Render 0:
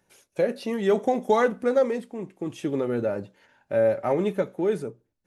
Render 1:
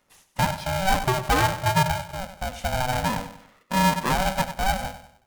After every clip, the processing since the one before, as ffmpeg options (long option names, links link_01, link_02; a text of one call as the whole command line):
ffmpeg -i in.wav -filter_complex "[0:a]asoftclip=type=tanh:threshold=-14dB,asplit=2[link_01][link_02];[link_02]aecho=0:1:96|192|288|384:0.266|0.109|0.0447|0.0183[link_03];[link_01][link_03]amix=inputs=2:normalize=0,aeval=exprs='val(0)*sgn(sin(2*PI*380*n/s))':channel_layout=same,volume=1.5dB" out.wav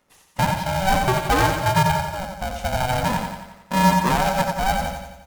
ffmpeg -i in.wav -filter_complex "[0:a]equalizer=frequency=350:width=0.31:gain=3,asplit=2[link_01][link_02];[link_02]aecho=0:1:88|176|264|352|440|528|616:0.501|0.271|0.146|0.0789|0.0426|0.023|0.0124[link_03];[link_01][link_03]amix=inputs=2:normalize=0" out.wav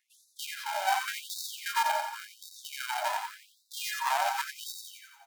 ffmpeg -i in.wav -af "afftfilt=real='re*gte(b*sr/1024,560*pow(3700/560,0.5+0.5*sin(2*PI*0.89*pts/sr)))':imag='im*gte(b*sr/1024,560*pow(3700/560,0.5+0.5*sin(2*PI*0.89*pts/sr)))':win_size=1024:overlap=0.75,volume=-6.5dB" out.wav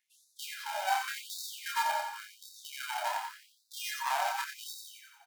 ffmpeg -i in.wav -filter_complex "[0:a]asplit=2[link_01][link_02];[link_02]adelay=28,volume=-5dB[link_03];[link_01][link_03]amix=inputs=2:normalize=0,volume=-4dB" out.wav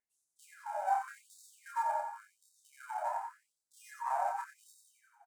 ffmpeg -i in.wav -af "firequalizer=gain_entry='entry(790,0);entry(3200,-29);entry(7900,-11);entry(14000,-22)':delay=0.05:min_phase=1" out.wav